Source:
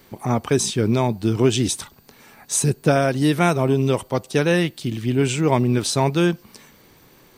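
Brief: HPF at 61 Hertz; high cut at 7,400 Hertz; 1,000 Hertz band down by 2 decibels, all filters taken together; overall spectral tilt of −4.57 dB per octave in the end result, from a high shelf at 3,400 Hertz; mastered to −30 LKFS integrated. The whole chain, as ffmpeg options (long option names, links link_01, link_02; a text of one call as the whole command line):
ffmpeg -i in.wav -af "highpass=61,lowpass=7400,equalizer=frequency=1000:width_type=o:gain=-3.5,highshelf=frequency=3400:gain=7,volume=-10dB" out.wav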